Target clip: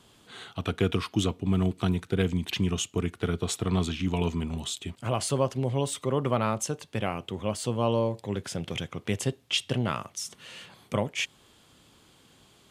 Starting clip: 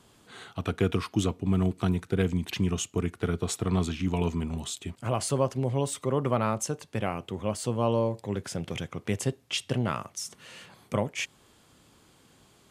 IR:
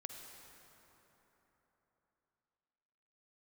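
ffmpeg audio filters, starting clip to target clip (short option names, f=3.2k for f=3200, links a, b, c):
-af "equalizer=f=3.3k:t=o:w=0.75:g=5"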